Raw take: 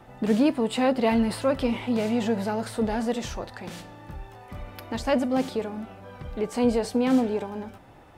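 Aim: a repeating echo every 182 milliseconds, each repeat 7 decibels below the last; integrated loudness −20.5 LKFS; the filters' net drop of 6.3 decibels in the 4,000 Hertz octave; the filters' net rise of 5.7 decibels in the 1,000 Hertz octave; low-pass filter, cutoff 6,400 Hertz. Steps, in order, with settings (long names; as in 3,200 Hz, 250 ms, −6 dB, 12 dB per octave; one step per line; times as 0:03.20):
low-pass filter 6,400 Hz
parametric band 1,000 Hz +8 dB
parametric band 4,000 Hz −9 dB
repeating echo 182 ms, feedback 45%, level −7 dB
level +3 dB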